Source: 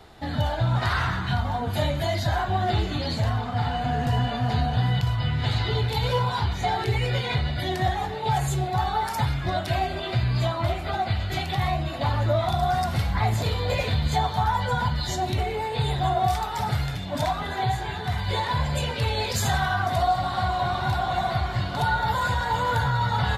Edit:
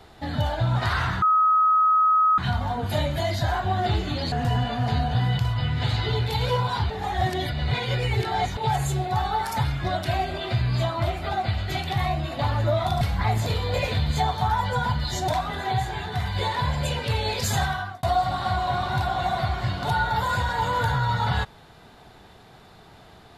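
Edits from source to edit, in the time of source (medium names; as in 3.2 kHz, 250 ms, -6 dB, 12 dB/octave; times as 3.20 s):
1.22 s: add tone 1.27 kHz -15.5 dBFS 1.16 s
3.16–3.94 s: delete
6.52–8.19 s: reverse
12.63–12.97 s: delete
15.24–17.20 s: delete
19.53–19.95 s: fade out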